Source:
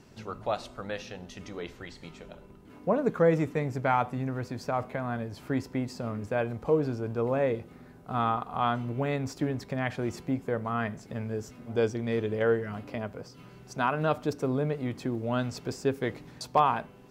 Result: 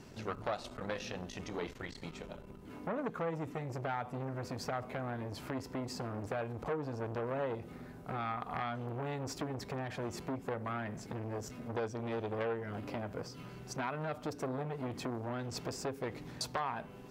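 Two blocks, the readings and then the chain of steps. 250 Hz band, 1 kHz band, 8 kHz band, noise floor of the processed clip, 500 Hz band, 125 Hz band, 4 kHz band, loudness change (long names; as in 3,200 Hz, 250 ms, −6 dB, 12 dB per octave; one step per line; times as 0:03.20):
−9.0 dB, −9.5 dB, −0.5 dB, −51 dBFS, −9.5 dB, −8.0 dB, −3.0 dB, −9.5 dB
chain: downward compressor 12 to 1, threshold −32 dBFS, peak gain reduction 15 dB
saturating transformer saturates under 1,600 Hz
level +2.5 dB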